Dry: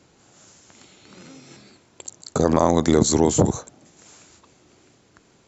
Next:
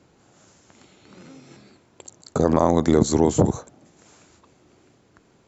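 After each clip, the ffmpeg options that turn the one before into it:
-af "highshelf=f=2.4k:g=-7.5"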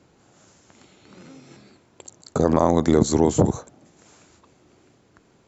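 -af anull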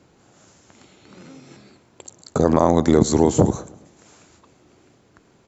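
-af "aecho=1:1:107|214|321|428:0.0944|0.0463|0.0227|0.0111,volume=2dB"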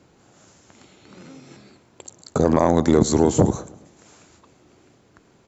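-af "asoftclip=type=tanh:threshold=-2.5dB"

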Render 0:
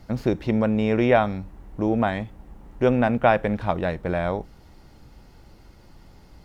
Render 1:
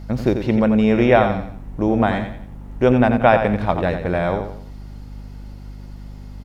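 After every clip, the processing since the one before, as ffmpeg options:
-af "aecho=1:1:88|176|264|352:0.398|0.147|0.0545|0.0202,aeval=exprs='val(0)+0.0126*(sin(2*PI*50*n/s)+sin(2*PI*2*50*n/s)/2+sin(2*PI*3*50*n/s)/3+sin(2*PI*4*50*n/s)/4+sin(2*PI*5*50*n/s)/5)':c=same,volume=4dB"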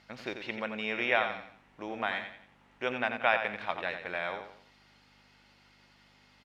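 -af "bandpass=f=2.6k:t=q:w=1.2:csg=0,volume=-2.5dB"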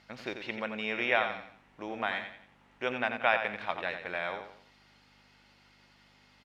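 -af anull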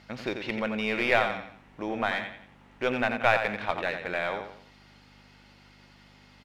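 -filter_complex "[0:a]asplit=2[a][b];[b]aeval=exprs='clip(val(0),-1,0.0224)':c=same,volume=-3.5dB[c];[a][c]amix=inputs=2:normalize=0,lowshelf=f=390:g=6"

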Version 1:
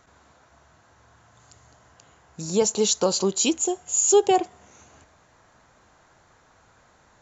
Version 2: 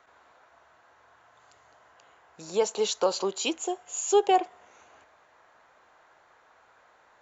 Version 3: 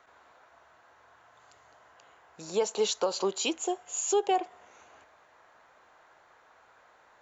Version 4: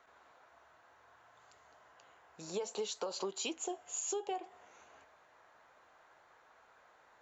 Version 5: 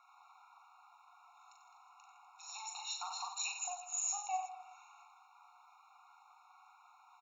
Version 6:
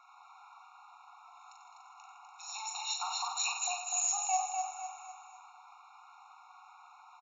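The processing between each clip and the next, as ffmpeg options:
-filter_complex "[0:a]acrossover=split=390 3700:gain=0.126 1 0.224[a][b][c];[a][b][c]amix=inputs=3:normalize=0"
-af "alimiter=limit=-17.5dB:level=0:latency=1:release=179"
-af "flanger=delay=4.4:depth=7.2:regen=-73:speed=0.6:shape=sinusoidal,acompressor=threshold=-35dB:ratio=6"
-filter_complex "[0:a]asplit=2[a][b];[b]aecho=0:1:40|92|159.6|247.5|361.7:0.631|0.398|0.251|0.158|0.1[c];[a][c]amix=inputs=2:normalize=0,afftfilt=real='re*eq(mod(floor(b*sr/1024/720),2),1)':imag='im*eq(mod(floor(b*sr/1024/720),2),1)':win_size=1024:overlap=0.75,volume=1.5dB"
-af "aresample=16000,volume=29.5dB,asoftclip=hard,volume=-29.5dB,aresample=44100,aecho=1:1:250|500|750|1000|1250:0.531|0.234|0.103|0.0452|0.0199,volume=5.5dB"

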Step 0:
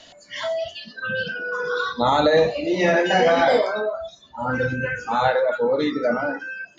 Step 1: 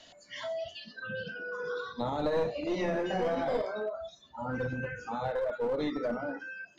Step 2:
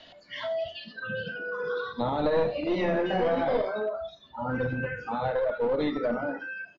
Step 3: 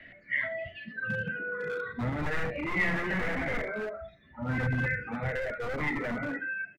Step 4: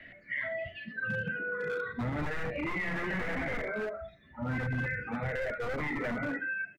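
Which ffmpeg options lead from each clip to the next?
-filter_complex "[0:a]acrossover=split=600[a][b];[a]aeval=exprs='clip(val(0),-1,0.0631)':c=same[c];[b]acompressor=threshold=-31dB:ratio=6[d];[c][d]amix=inputs=2:normalize=0,volume=-8dB"
-af "lowpass=f=4.3k:w=0.5412,lowpass=f=4.3k:w=1.3066,aecho=1:1:78:0.15,volume=4.5dB"
-filter_complex "[0:a]firequalizer=gain_entry='entry(120,0);entry(940,-19);entry(2000,10);entry(3000,-17);entry(4700,-27)':delay=0.05:min_phase=1,acrossover=split=170|1400[a][b][c];[b]aeval=exprs='0.0168*(abs(mod(val(0)/0.0168+3,4)-2)-1)':c=same[d];[a][d][c]amix=inputs=3:normalize=0,volume=5dB"
-af "alimiter=level_in=1.5dB:limit=-24dB:level=0:latency=1:release=51,volume=-1.5dB"

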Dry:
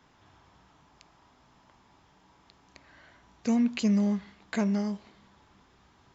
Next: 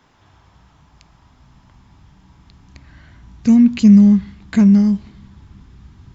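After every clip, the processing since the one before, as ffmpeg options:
-af "asubboost=boost=11.5:cutoff=170,volume=6dB"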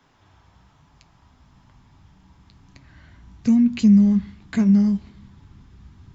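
-filter_complex "[0:a]flanger=delay=7.1:depth=4.8:regen=-60:speed=1.1:shape=sinusoidal,acrossover=split=210[a][b];[b]acompressor=threshold=-19dB:ratio=6[c];[a][c]amix=inputs=2:normalize=0"

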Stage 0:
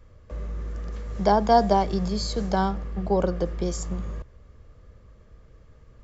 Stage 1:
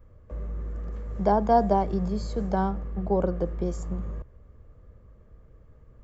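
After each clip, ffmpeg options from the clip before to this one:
-af "equalizer=f=4.8k:w=0.51:g=-14,volume=-1dB"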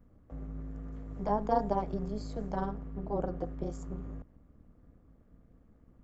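-af "tremolo=f=210:d=0.889,volume=-4.5dB"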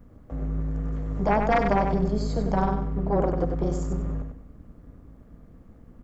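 -af "aeval=exprs='0.224*sin(PI/2*2.51*val(0)/0.224)':c=same,aecho=1:1:96|192|288|384:0.501|0.15|0.0451|0.0135,volume=-1.5dB"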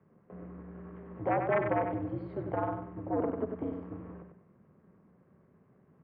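-af "highpass=f=240:t=q:w=0.5412,highpass=f=240:t=q:w=1.307,lowpass=f=2.7k:t=q:w=0.5176,lowpass=f=2.7k:t=q:w=0.7071,lowpass=f=2.7k:t=q:w=1.932,afreqshift=-84,volume=-6dB"

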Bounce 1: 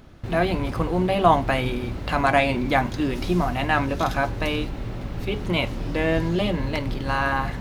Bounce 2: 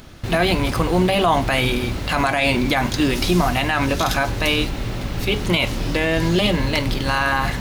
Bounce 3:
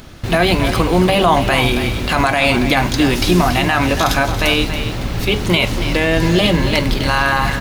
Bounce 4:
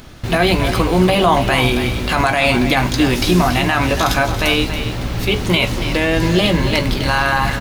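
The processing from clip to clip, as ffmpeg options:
-af "highshelf=f=2.3k:g=11,alimiter=level_in=11.5dB:limit=-1dB:release=50:level=0:latency=1,volume=-6.5dB"
-af "aecho=1:1:280:0.316,volume=4dB"
-filter_complex "[0:a]asplit=2[a][b];[b]adelay=16,volume=-11dB[c];[a][c]amix=inputs=2:normalize=0,volume=-1dB"

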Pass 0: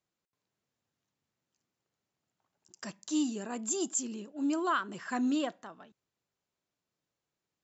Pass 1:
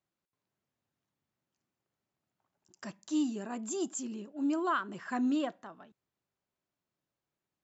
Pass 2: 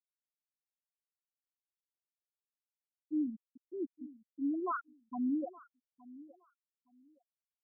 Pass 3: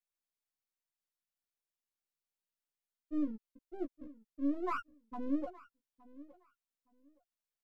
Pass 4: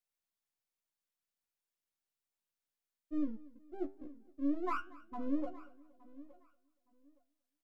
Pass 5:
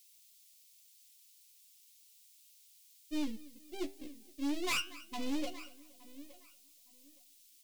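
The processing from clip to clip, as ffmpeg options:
-af "highshelf=f=3.3k:g=-8.5,bandreject=f=470:w=12"
-filter_complex "[0:a]afftfilt=real='re*gte(hypot(re,im),0.158)':imag='im*gte(hypot(re,im),0.158)':win_size=1024:overlap=0.75,asplit=2[a][b];[b]adelay=867,lowpass=f=1.6k:p=1,volume=-19dB,asplit=2[c][d];[d]adelay=867,lowpass=f=1.6k:p=1,volume=0.22[e];[a][c][e]amix=inputs=3:normalize=0,volume=-3dB"
-filter_complex "[0:a]aeval=exprs='if(lt(val(0),0),0.447*val(0),val(0))':c=same,asplit=2[a][b];[b]adelay=14,volume=-4dB[c];[a][c]amix=inputs=2:normalize=0"
-af "flanger=delay=9.6:depth=4.1:regen=81:speed=1:shape=triangular,aecho=1:1:235|470|705|940:0.0794|0.0405|0.0207|0.0105,volume=4dB"
-af "aexciter=amount=12.8:drive=7.9:freq=2.2k,asoftclip=type=hard:threshold=-30dB,volume=1dB"

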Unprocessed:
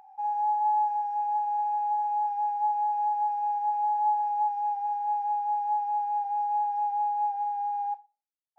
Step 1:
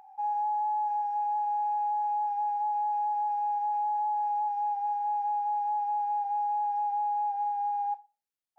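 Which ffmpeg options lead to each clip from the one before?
-af "alimiter=level_in=1.5dB:limit=-24dB:level=0:latency=1:release=36,volume=-1.5dB"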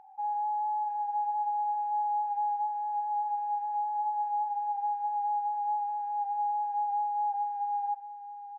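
-filter_complex "[0:a]lowpass=f=1.2k:p=1,asplit=2[a][b];[b]aecho=0:1:637:0.266[c];[a][c]amix=inputs=2:normalize=0"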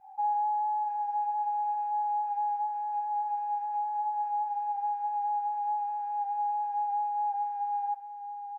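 -af "adynamicequalizer=threshold=0.00708:dfrequency=860:dqfactor=3.9:tfrequency=860:tqfactor=3.9:attack=5:release=100:ratio=0.375:range=2.5:mode=cutabove:tftype=bell,volume=4.5dB"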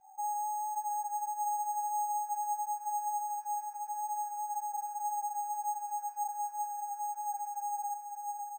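-af "equalizer=f=1.3k:t=o:w=0.77:g=2,aecho=1:1:552|1104|1656|2208|2760|3312|3864:0.596|0.304|0.155|0.079|0.0403|0.0206|0.0105,acrusher=samples=6:mix=1:aa=0.000001,volume=-7dB"

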